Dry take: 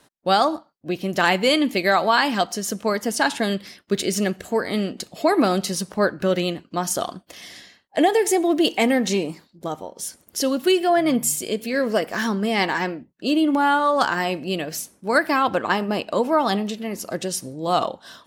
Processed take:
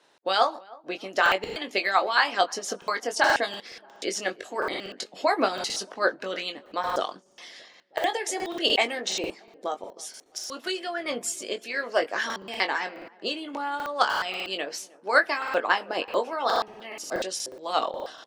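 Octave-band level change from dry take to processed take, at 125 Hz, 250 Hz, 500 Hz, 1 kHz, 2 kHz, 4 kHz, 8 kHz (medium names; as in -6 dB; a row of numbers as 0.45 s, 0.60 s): -21.0 dB, -16.0 dB, -7.0 dB, -4.5 dB, -1.5 dB, -2.5 dB, -6.5 dB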